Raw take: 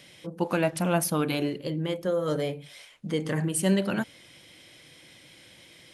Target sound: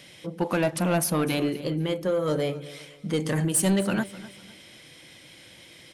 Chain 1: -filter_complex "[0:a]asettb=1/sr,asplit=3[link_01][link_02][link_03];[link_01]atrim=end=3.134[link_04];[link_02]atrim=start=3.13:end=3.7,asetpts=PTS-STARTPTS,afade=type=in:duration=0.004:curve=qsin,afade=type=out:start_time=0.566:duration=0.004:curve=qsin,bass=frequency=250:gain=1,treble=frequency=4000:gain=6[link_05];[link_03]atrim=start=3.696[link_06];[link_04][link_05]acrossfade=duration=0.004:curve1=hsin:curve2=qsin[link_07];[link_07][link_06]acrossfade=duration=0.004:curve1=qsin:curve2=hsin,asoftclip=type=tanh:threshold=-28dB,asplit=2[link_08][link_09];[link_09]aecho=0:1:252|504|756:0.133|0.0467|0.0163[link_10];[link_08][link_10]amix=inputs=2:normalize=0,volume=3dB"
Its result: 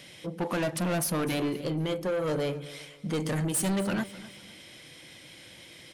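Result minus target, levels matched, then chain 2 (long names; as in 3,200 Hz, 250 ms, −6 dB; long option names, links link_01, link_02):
soft clipping: distortion +8 dB
-filter_complex "[0:a]asettb=1/sr,asplit=3[link_01][link_02][link_03];[link_01]atrim=end=3.134[link_04];[link_02]atrim=start=3.13:end=3.7,asetpts=PTS-STARTPTS,afade=type=in:duration=0.004:curve=qsin,afade=type=out:start_time=0.566:duration=0.004:curve=qsin,bass=frequency=250:gain=1,treble=frequency=4000:gain=6[link_05];[link_03]atrim=start=3.696[link_06];[link_04][link_05]acrossfade=duration=0.004:curve1=hsin:curve2=qsin[link_07];[link_07][link_06]acrossfade=duration=0.004:curve1=qsin:curve2=hsin,asoftclip=type=tanh:threshold=-19dB,asplit=2[link_08][link_09];[link_09]aecho=0:1:252|504|756:0.133|0.0467|0.0163[link_10];[link_08][link_10]amix=inputs=2:normalize=0,volume=3dB"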